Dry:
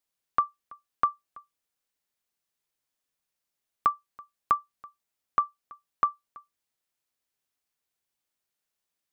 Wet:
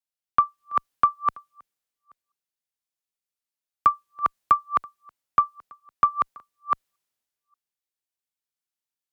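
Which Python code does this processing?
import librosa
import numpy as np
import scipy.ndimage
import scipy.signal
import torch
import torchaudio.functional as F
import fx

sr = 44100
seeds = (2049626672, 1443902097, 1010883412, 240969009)

y = fx.reverse_delay(x, sr, ms=580, wet_db=-3)
y = fx.cheby_harmonics(y, sr, harmonics=(2,), levels_db=(-35,), full_scale_db=-11.5)
y = fx.band_widen(y, sr, depth_pct=40)
y = y * 10.0 ** (4.0 / 20.0)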